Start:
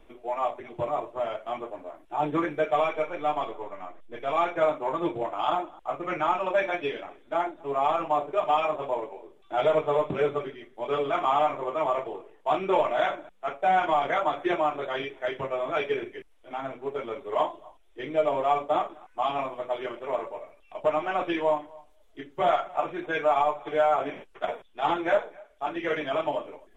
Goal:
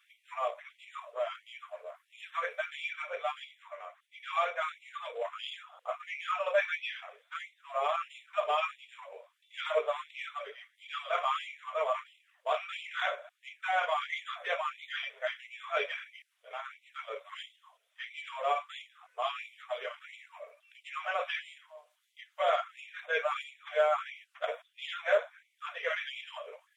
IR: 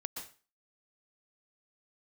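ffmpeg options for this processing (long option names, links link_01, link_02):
-af "equalizer=frequency=840:width=3.3:gain=-14.5,afftfilt=real='re*gte(b*sr/1024,420*pow(2000/420,0.5+0.5*sin(2*PI*1.5*pts/sr)))':imag='im*gte(b*sr/1024,420*pow(2000/420,0.5+0.5*sin(2*PI*1.5*pts/sr)))':win_size=1024:overlap=0.75"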